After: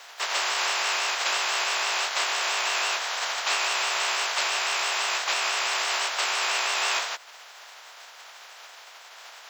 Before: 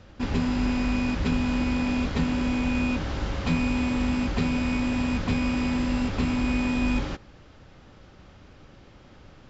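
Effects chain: spectral contrast lowered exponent 0.5; vibrato 6 Hz 97 cents; in parallel at -0.5 dB: compressor, threshold -39 dBFS, peak gain reduction 18 dB; on the sum: frequency shift +140 Hz; HPF 710 Hz 24 dB/oct

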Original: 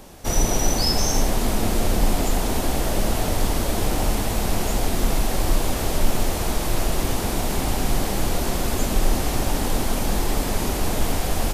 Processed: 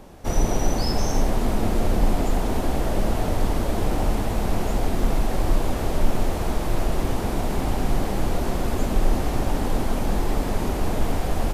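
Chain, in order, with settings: high shelf 2600 Hz -11 dB

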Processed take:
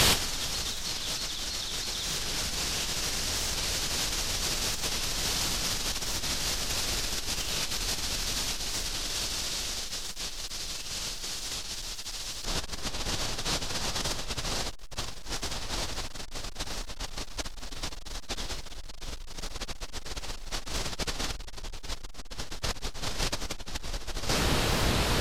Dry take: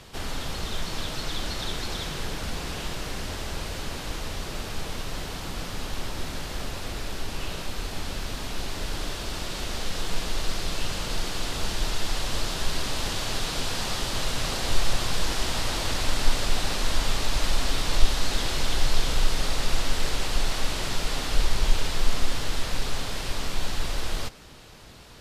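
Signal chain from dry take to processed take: dynamic EQ 5900 Hz, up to +6 dB, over -49 dBFS, Q 1.4; overloaded stage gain 18 dB; high shelf 2000 Hz +10 dB, from 12.45 s -2 dB; negative-ratio compressor -40 dBFS, ratio -1; record warp 45 rpm, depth 100 cents; gain +7 dB

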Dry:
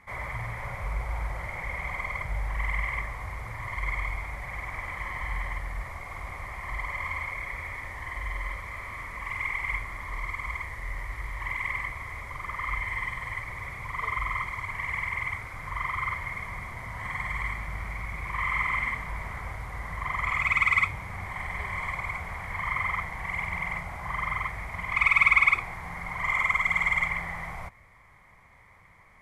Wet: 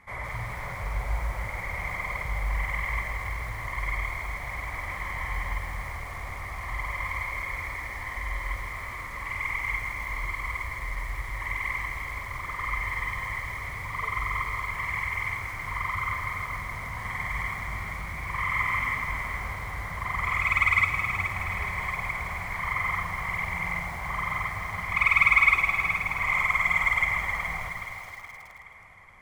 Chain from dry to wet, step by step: split-band echo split 400 Hz, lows 0.143 s, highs 0.422 s, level -8 dB; on a send at -12 dB: reverb, pre-delay 3 ms; on the sum: lo-fi delay 0.163 s, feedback 55%, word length 7-bit, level -10 dB

